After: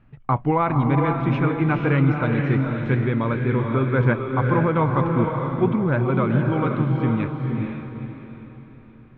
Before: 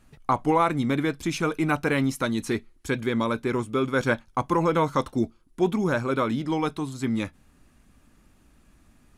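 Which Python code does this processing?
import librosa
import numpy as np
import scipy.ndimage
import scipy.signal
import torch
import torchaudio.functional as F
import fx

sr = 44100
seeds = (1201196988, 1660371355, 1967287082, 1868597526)

y = scipy.signal.sosfilt(scipy.signal.butter(4, 2700.0, 'lowpass', fs=sr, output='sos'), x)
y = fx.peak_eq(y, sr, hz=130.0, db=12.0, octaves=0.7)
y = fx.echo_diffused(y, sr, ms=473, feedback_pct=41, wet_db=-3)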